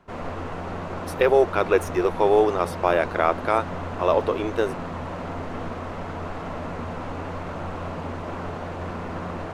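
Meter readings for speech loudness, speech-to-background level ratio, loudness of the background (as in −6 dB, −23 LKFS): −22.5 LKFS, 10.0 dB, −32.5 LKFS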